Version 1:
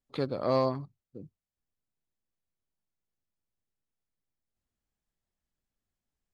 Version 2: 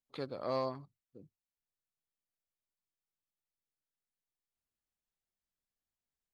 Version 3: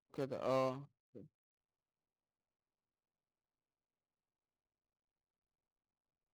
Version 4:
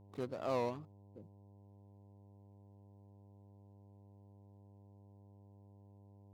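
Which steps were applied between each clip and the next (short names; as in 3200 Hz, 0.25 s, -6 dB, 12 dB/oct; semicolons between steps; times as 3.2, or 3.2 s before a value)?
low shelf 390 Hz -6.5 dB; gain -6 dB
median filter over 25 samples
wow and flutter 150 cents; buzz 100 Hz, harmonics 10, -60 dBFS -7 dB/oct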